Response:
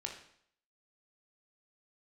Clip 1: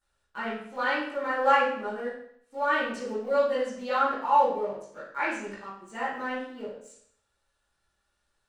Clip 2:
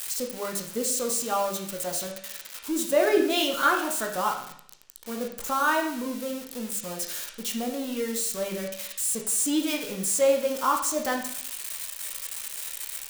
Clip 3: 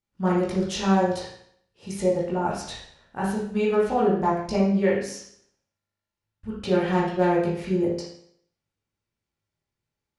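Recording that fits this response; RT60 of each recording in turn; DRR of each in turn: 2; 0.65, 0.65, 0.65 seconds; −13.5, 1.0, −7.0 decibels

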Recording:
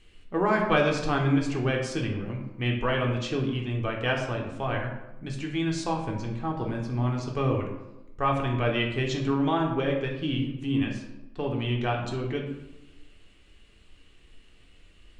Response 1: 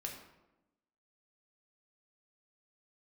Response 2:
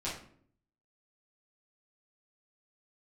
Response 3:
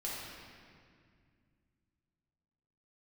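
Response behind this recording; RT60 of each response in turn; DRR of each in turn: 1; 1.0, 0.60, 2.1 seconds; 0.0, −8.5, −6.5 decibels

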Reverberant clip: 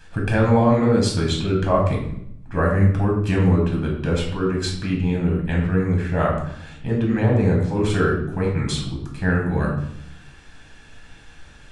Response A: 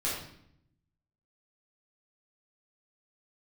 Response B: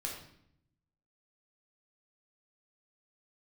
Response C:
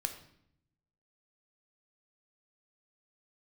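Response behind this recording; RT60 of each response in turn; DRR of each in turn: B; 0.70, 0.70, 0.70 seconds; −8.5, −2.0, 6.0 decibels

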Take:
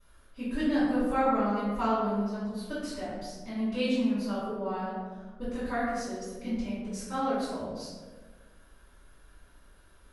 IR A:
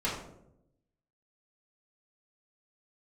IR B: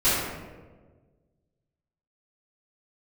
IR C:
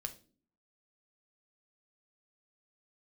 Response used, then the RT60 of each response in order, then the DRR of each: B; 0.80, 1.4, 0.40 seconds; −7.0, −15.0, 7.0 decibels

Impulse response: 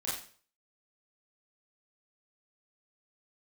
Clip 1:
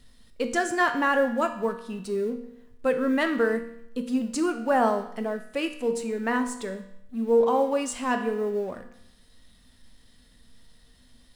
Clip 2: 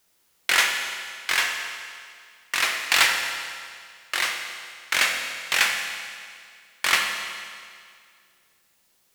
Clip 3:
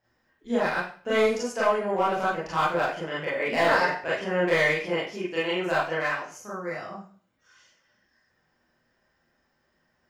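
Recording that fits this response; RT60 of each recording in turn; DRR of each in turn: 3; 0.80, 2.1, 0.45 seconds; 6.0, 2.0, −8.5 decibels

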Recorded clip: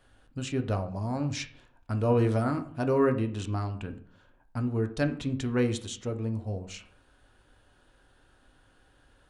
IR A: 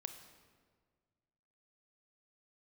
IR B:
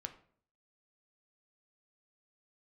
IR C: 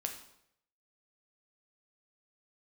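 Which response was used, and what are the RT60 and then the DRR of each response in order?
B; 1.7, 0.55, 0.75 seconds; 7.5, 6.0, 3.0 decibels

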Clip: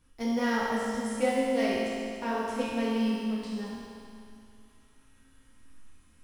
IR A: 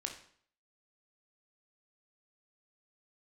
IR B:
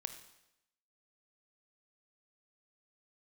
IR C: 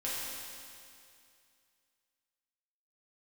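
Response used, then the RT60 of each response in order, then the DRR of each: C; 0.55, 0.85, 2.4 seconds; 3.0, 8.5, −8.5 decibels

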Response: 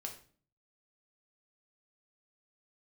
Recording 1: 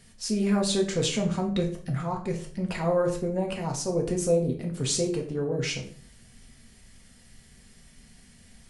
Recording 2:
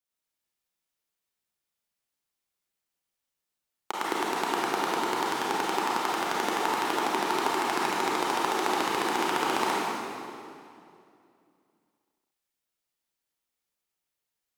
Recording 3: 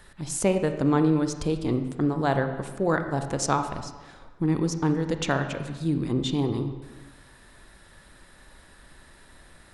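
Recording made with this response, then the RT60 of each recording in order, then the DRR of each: 1; 0.45, 2.5, 1.3 seconds; 0.5, −6.5, 7.0 decibels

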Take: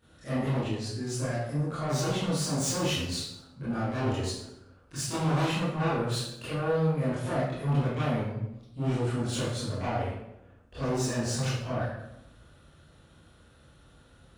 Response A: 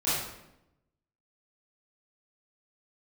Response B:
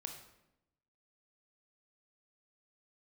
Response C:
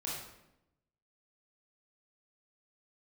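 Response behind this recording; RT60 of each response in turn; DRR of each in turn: A; 0.85, 0.90, 0.85 seconds; −13.5, 3.5, −6.0 decibels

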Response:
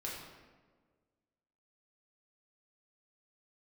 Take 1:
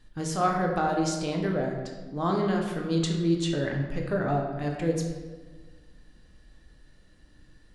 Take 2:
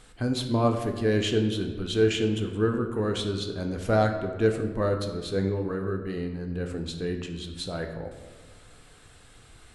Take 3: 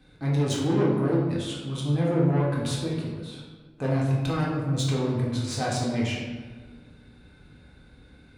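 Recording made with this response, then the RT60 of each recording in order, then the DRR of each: 3; 1.5, 1.5, 1.5 seconds; 0.0, 4.0, −5.0 decibels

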